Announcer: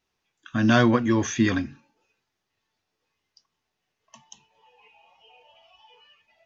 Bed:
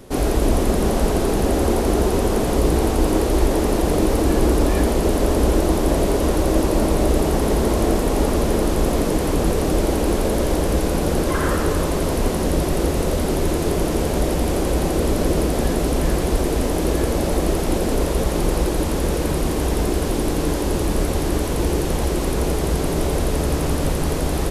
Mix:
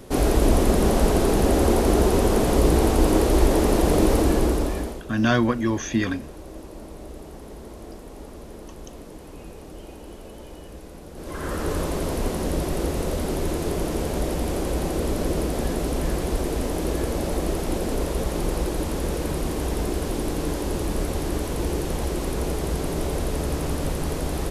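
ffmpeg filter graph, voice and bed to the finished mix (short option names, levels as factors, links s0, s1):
-filter_complex "[0:a]adelay=4550,volume=0.841[s0];[1:a]volume=5.96,afade=t=out:st=4.13:d=0.91:silence=0.0891251,afade=t=in:st=11.14:d=0.6:silence=0.158489[s1];[s0][s1]amix=inputs=2:normalize=0"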